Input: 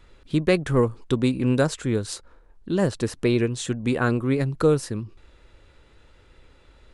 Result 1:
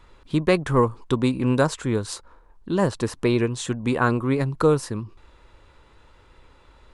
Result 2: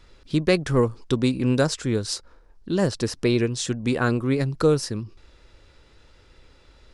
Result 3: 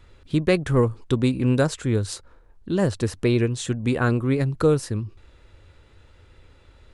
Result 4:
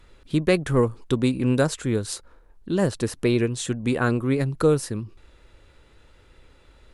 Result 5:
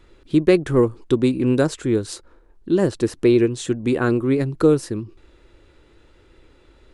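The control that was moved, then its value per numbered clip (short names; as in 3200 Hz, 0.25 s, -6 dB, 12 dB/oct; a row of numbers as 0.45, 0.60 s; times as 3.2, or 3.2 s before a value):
bell, frequency: 1000, 5200, 91, 13000, 340 Hz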